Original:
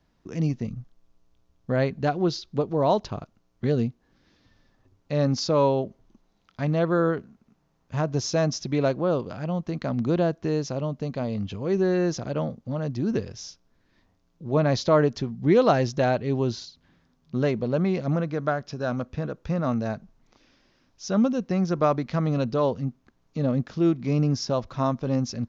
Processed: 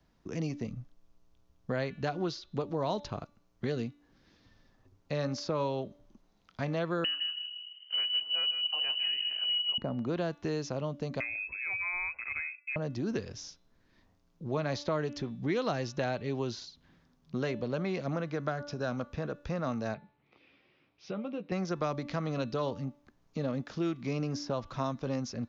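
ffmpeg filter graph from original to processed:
-filter_complex "[0:a]asettb=1/sr,asplit=3[a][b][c];[a]atrim=end=7.044[d];[b]atrim=start=7.04:end=9.78,asetpts=PTS-STARTPTS,afade=t=in:d=0.004:c=qsin,afade=t=out:st=2.736:d=0.004:c=qsin,lowshelf=f=290:t=q:w=3:g=12,asplit=2[e][f];[f]adelay=157,lowpass=f=880:p=1,volume=-4dB,asplit=2[g][h];[h]adelay=157,lowpass=f=880:p=1,volume=0.27,asplit=2[i][j];[j]adelay=157,lowpass=f=880:p=1,volume=0.27,asplit=2[k][l];[l]adelay=157,lowpass=f=880:p=1,volume=0.27[m];[e][g][i][k][m]amix=inputs=5:normalize=0,atrim=end_sample=120834,lowpass=f=2.6k:t=q:w=0.5098,lowpass=f=2.6k:t=q:w=0.6013,lowpass=f=2.6k:t=q:w=0.9,lowpass=f=2.6k:t=q:w=2.563,afreqshift=-3100[n];[c]atrim=start=9.776[o];[d][n]acrossfade=d=0.004:c1=hsin:c2=qsin[p];[p][o]acrossfade=d=0.004:c1=qsin:c2=hsin,asettb=1/sr,asplit=3[q][r][s];[q]atrim=end=11.204[t];[r]atrim=start=11.2:end=12.76,asetpts=PTS-STARTPTS,afade=t=in:d=0.004:c=qsin,afade=t=out:st=1.556:d=0.004:c=qsin,lowpass=f=2.3k:t=q:w=0.5098,lowpass=f=2.3k:t=q:w=0.6013,lowpass=f=2.3k:t=q:w=0.9,lowpass=f=2.3k:t=q:w=2.563,afreqshift=-2700,lowshelf=f=120:t=q:w=1.5:g=7.5,agate=range=-33dB:threshold=-39dB:ratio=3:release=100:detection=peak[u];[s]atrim=start=12.756[v];[t][u]acrossfade=d=0.004:c1=hsin:c2=qsin[w];[w][v]acrossfade=d=0.004:c1=qsin:c2=hsin,asettb=1/sr,asplit=3[x][y][z];[x]atrim=end=19.944[aa];[y]atrim=start=19.94:end=21.52,asetpts=PTS-STARTPTS,afade=t=in:d=0.004:c=qsin,afade=t=out:st=1.576:d=0.004:c=qsin,acompressor=threshold=-27dB:ratio=5:attack=3.2:release=140:knee=1:detection=peak,highpass=130,equalizer=f=230:t=q:w=4:g=-9,equalizer=f=640:t=q:w=4:g=-4,equalizer=f=980:t=q:w=4:g=-5,equalizer=f=1.6k:t=q:w=4:g=-7,equalizer=f=2.4k:t=q:w=4:g=7,lowpass=f=3.4k:w=0.5412,lowpass=f=3.4k:w=1.3066,asplit=2[ab][ac];[ac]adelay=14,volume=-8dB[ad];[ab][ad]amix=inputs=2:normalize=0,atrim=end_sample=69678[ae];[z]atrim=start=21.516[af];[aa][ae]acrossfade=d=0.004:c1=hsin:c2=qsin[ag];[ag][af]acrossfade=d=0.004:c1=qsin:c2=hsin,bandreject=f=290.1:t=h:w=4,bandreject=f=580.2:t=h:w=4,bandreject=f=870.3:t=h:w=4,bandreject=f=1.1604k:t=h:w=4,bandreject=f=1.4505k:t=h:w=4,bandreject=f=1.7406k:t=h:w=4,bandreject=f=2.0307k:t=h:w=4,bandreject=f=2.3208k:t=h:w=4,bandreject=f=2.6109k:t=h:w=4,bandreject=f=2.901k:t=h:w=4,bandreject=f=3.1911k:t=h:w=4,bandreject=f=3.4812k:t=h:w=4,bandreject=f=3.7713k:t=h:w=4,bandreject=f=4.0614k:t=h:w=4,acrossover=split=300|1100|2500[ah][ai][aj][ak];[ah]acompressor=threshold=-36dB:ratio=4[al];[ai]acompressor=threshold=-33dB:ratio=4[am];[aj]acompressor=threshold=-39dB:ratio=4[an];[ak]acompressor=threshold=-42dB:ratio=4[ao];[al][am][an][ao]amix=inputs=4:normalize=0,volume=-1.5dB"

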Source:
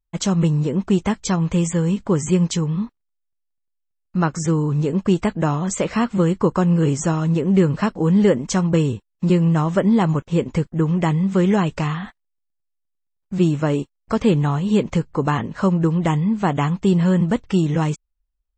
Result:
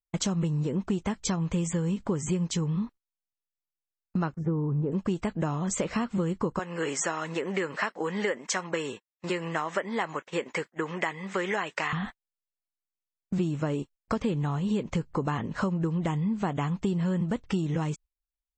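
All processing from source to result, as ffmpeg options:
-filter_complex "[0:a]asettb=1/sr,asplit=3[a][b][c];[a]atrim=end=4.344[d];[b]atrim=start=4.34:end=4.92,asetpts=PTS-STARTPTS,afade=t=in:d=0.004:c=qsin,afade=t=out:st=0.576:d=0.004:c=qsin,lowpass=1k,agate=range=-33dB:threshold=-24dB:ratio=3:release=100:detection=peak[e];[c]atrim=start=4.916[f];[d][e]acrossfade=d=0.004:c1=hsin:c2=qsin[g];[g][f]acrossfade=d=0.004:c1=qsin:c2=hsin,asettb=1/sr,asplit=3[h][i][j];[h]atrim=end=6.594[k];[i]atrim=start=6.59:end=11.93,asetpts=PTS-STARTPTS,afade=t=in:d=0.004:c=qsin,afade=t=out:st=5.336:d=0.004:c=qsin,highpass=520,equalizer=f=1.9k:t=o:w=0.67:g=9[l];[j]atrim=start=11.926[m];[k][l]acrossfade=d=0.004:c1=hsin:c2=qsin[n];[n][m]acrossfade=d=0.004:c1=qsin:c2=hsin,agate=range=-18dB:threshold=-38dB:ratio=16:detection=peak,acompressor=threshold=-26dB:ratio=5"

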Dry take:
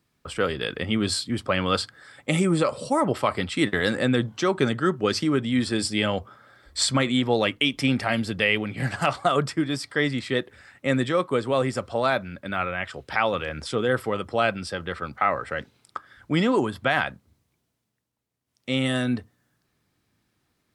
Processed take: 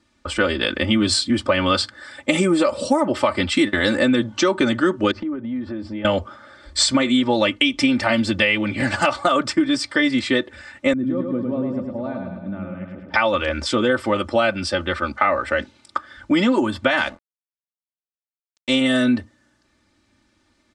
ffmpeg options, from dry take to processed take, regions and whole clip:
-filter_complex "[0:a]asettb=1/sr,asplit=3[a][b][c];[a]atrim=end=5.114[d];[b]atrim=start=5.11:end=6.05,asetpts=PTS-STARTPTS,afade=t=in:d=0.004:c=qsin,afade=t=out:st=0.936:d=0.004:c=qsin,lowpass=1.2k,acompressor=threshold=-35dB:ratio=6:attack=3.2:release=140:knee=1:detection=peak[e];[c]atrim=start=6.046[f];[d][e]acrossfade=d=0.004:c1=hsin:c2=qsin[g];[g][f]acrossfade=d=0.004:c1=qsin:c2=hsin,asettb=1/sr,asplit=3[h][i][j];[h]atrim=end=10.934[k];[i]atrim=start=10.93:end=13.14,asetpts=PTS-STARTPTS,afade=t=in:d=0.004:c=qsin,afade=t=out:st=2.206:d=0.004:c=qsin,bandpass=f=170:t=q:w=2.1,aecho=1:1:105|210|315|420|525|630|735|840:0.631|0.36|0.205|0.117|0.0666|0.038|0.0216|0.0123,atrim=end_sample=97461[l];[j]atrim=start=13.136[m];[k][l]acrossfade=d=0.004:c1=hsin:c2=qsin[n];[n][m]acrossfade=d=0.004:c1=qsin:c2=hsin,asettb=1/sr,asplit=3[o][p][q];[o]atrim=end=16.974[r];[p]atrim=start=16.97:end=18.81,asetpts=PTS-STARTPTS,afade=t=in:d=0.004:c=qsin,afade=t=out:st=1.836:d=0.004:c=qsin,aemphasis=mode=production:type=cd,bandreject=f=83.87:t=h:w=4,bandreject=f=167.74:t=h:w=4,bandreject=f=251.61:t=h:w=4,bandreject=f=335.48:t=h:w=4,bandreject=f=419.35:t=h:w=4,bandreject=f=503.22:t=h:w=4,bandreject=f=587.09:t=h:w=4,bandreject=f=670.96:t=h:w=4,bandreject=f=754.83:t=h:w=4,aeval=exprs='sgn(val(0))*max(abs(val(0))-0.00596,0)':c=same[s];[q]atrim=start=18.806[t];[r][s]acrossfade=d=0.004:c1=hsin:c2=qsin[u];[u][t]acrossfade=d=0.004:c1=qsin:c2=hsin,lowpass=f=8.3k:w=0.5412,lowpass=f=8.3k:w=1.3066,aecho=1:1:3.4:0.91,acompressor=threshold=-21dB:ratio=6,volume=7dB"

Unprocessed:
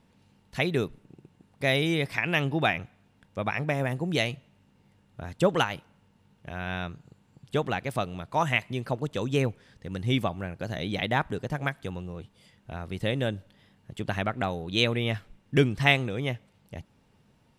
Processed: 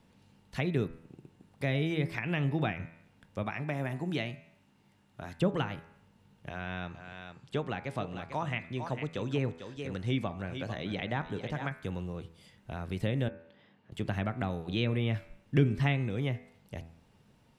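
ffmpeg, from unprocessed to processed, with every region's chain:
-filter_complex "[0:a]asettb=1/sr,asplit=3[a][b][c];[a]atrim=end=3.434[d];[b]atrim=start=3.43:end=5.39,asetpts=PTS-STARTPTS,afade=t=in:d=0.004:c=qsin,afade=t=out:st=1.956:d=0.004:c=qsin,lowshelf=f=120:g=-11.5,bandreject=f=490:w=5.1[e];[c]atrim=start=5.386[f];[d][e]acrossfade=d=0.004:c1=hsin:c2=qsin[g];[g][f]acrossfade=d=0.004:c1=qsin:c2=hsin,asettb=1/sr,asplit=3[h][i][j];[h]atrim=end=6.494[k];[i]atrim=start=6.49:end=11.71,asetpts=PTS-STARTPTS,afade=t=in:d=0.004:c=qsin,afade=t=out:st=5.216:d=0.004:c=qsin,lowpass=8.1k,lowshelf=f=230:g=-6,aecho=1:1:447:0.266,atrim=end_sample=230202[l];[j]atrim=start=11.706[m];[k][l]acrossfade=d=0.004:c1=hsin:c2=qsin[n];[n][m]acrossfade=d=0.004:c1=qsin:c2=hsin,asettb=1/sr,asplit=3[o][p][q];[o]atrim=end=13.284[r];[p]atrim=start=13.28:end=13.92,asetpts=PTS-STARTPTS,afade=t=in:d=0.004:c=qsin,afade=t=out:st=0.636:d=0.004:c=qsin,highpass=180,lowpass=3.1k,acompressor=threshold=-51dB:ratio=2.5:attack=3.2:release=140:knee=1:detection=peak[s];[q]atrim=start=13.916[t];[r][s]acrossfade=d=0.004:c1=hsin:c2=qsin[u];[u][t]acrossfade=d=0.004:c1=qsin:c2=hsin,acrossover=split=3700[v][w];[w]acompressor=threshold=-50dB:ratio=4:attack=1:release=60[x];[v][x]amix=inputs=2:normalize=0,bandreject=f=82.31:t=h:w=4,bandreject=f=164.62:t=h:w=4,bandreject=f=246.93:t=h:w=4,bandreject=f=329.24:t=h:w=4,bandreject=f=411.55:t=h:w=4,bandreject=f=493.86:t=h:w=4,bandreject=f=576.17:t=h:w=4,bandreject=f=658.48:t=h:w=4,bandreject=f=740.79:t=h:w=4,bandreject=f=823.1:t=h:w=4,bandreject=f=905.41:t=h:w=4,bandreject=f=987.72:t=h:w=4,bandreject=f=1.07003k:t=h:w=4,bandreject=f=1.15234k:t=h:w=4,bandreject=f=1.23465k:t=h:w=4,bandreject=f=1.31696k:t=h:w=4,bandreject=f=1.39927k:t=h:w=4,bandreject=f=1.48158k:t=h:w=4,bandreject=f=1.56389k:t=h:w=4,bandreject=f=1.6462k:t=h:w=4,bandreject=f=1.72851k:t=h:w=4,bandreject=f=1.81082k:t=h:w=4,bandreject=f=1.89313k:t=h:w=4,bandreject=f=1.97544k:t=h:w=4,bandreject=f=2.05775k:t=h:w=4,bandreject=f=2.14006k:t=h:w=4,bandreject=f=2.22237k:t=h:w=4,bandreject=f=2.30468k:t=h:w=4,bandreject=f=2.38699k:t=h:w=4,bandreject=f=2.4693k:t=h:w=4,bandreject=f=2.55161k:t=h:w=4,bandreject=f=2.63392k:t=h:w=4,acrossover=split=300[y][z];[z]acompressor=threshold=-39dB:ratio=2[aa];[y][aa]amix=inputs=2:normalize=0"

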